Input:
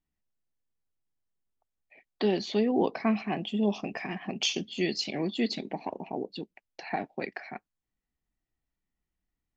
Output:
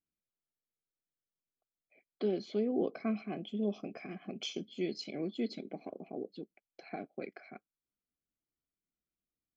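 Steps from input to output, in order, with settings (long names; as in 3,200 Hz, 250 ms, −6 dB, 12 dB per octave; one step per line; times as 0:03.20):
moving average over 48 samples
spectral tilt +4.5 dB per octave
level +3.5 dB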